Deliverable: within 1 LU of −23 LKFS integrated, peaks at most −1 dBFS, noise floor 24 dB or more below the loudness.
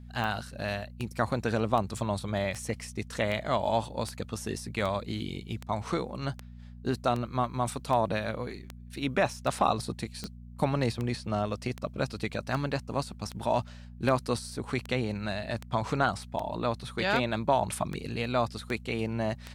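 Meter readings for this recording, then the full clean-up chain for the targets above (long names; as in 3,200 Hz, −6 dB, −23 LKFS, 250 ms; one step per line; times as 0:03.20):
number of clicks 26; mains hum 60 Hz; hum harmonics up to 240 Hz; level of the hum −43 dBFS; integrated loudness −31.5 LKFS; sample peak −12.0 dBFS; target loudness −23.0 LKFS
→ click removal
hum removal 60 Hz, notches 4
level +8.5 dB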